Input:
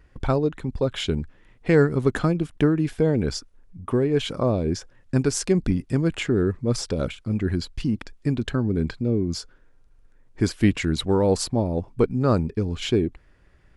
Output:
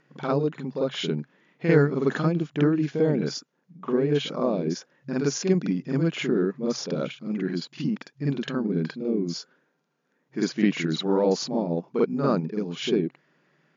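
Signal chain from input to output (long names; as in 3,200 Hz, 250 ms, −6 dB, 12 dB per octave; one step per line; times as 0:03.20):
backwards echo 48 ms −5.5 dB
brick-wall band-pass 130–7,100 Hz
level −2.5 dB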